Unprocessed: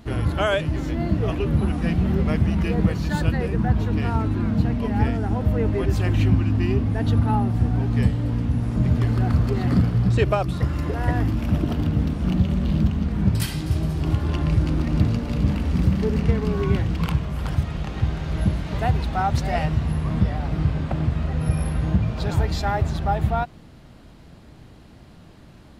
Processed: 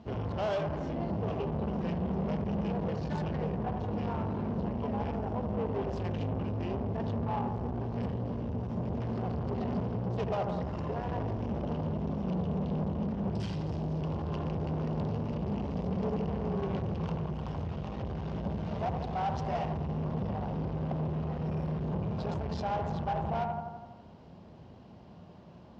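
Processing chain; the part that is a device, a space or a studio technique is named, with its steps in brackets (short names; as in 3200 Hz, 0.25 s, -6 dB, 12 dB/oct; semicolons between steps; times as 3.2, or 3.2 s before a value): analogue delay pedal into a guitar amplifier (analogue delay 83 ms, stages 1024, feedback 61%, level -7.5 dB; tube stage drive 26 dB, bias 0.4; speaker cabinet 110–4600 Hz, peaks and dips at 130 Hz -6 dB, 300 Hz -9 dB, 1300 Hz -8 dB, 2900 Hz +5 dB); band shelf 2700 Hz -11 dB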